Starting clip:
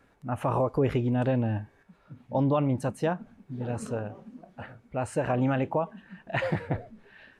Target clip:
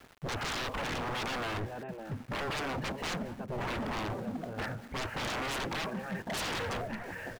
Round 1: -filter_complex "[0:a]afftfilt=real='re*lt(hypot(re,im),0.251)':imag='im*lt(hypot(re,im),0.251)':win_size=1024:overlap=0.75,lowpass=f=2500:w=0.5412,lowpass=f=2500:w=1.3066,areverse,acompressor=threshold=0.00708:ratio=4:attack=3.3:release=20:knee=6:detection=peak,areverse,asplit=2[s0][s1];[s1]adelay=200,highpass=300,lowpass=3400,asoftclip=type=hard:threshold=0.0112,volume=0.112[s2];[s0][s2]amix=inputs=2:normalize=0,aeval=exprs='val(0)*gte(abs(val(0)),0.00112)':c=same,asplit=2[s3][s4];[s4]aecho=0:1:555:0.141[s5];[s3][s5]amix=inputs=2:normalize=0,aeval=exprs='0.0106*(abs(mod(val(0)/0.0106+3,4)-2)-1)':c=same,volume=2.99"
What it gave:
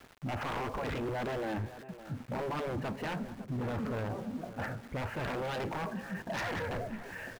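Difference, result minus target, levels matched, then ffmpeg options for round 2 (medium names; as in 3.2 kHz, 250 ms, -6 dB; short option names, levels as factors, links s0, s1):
compression: peak gain reduction +8.5 dB
-filter_complex "[0:a]afftfilt=real='re*lt(hypot(re,im),0.251)':imag='im*lt(hypot(re,im),0.251)':win_size=1024:overlap=0.75,lowpass=f=2500:w=0.5412,lowpass=f=2500:w=1.3066,areverse,acompressor=threshold=0.0266:ratio=4:attack=3.3:release=20:knee=6:detection=peak,areverse,asplit=2[s0][s1];[s1]adelay=200,highpass=300,lowpass=3400,asoftclip=type=hard:threshold=0.0112,volume=0.112[s2];[s0][s2]amix=inputs=2:normalize=0,aeval=exprs='val(0)*gte(abs(val(0)),0.00112)':c=same,asplit=2[s3][s4];[s4]aecho=0:1:555:0.141[s5];[s3][s5]amix=inputs=2:normalize=0,aeval=exprs='0.0106*(abs(mod(val(0)/0.0106+3,4)-2)-1)':c=same,volume=2.99"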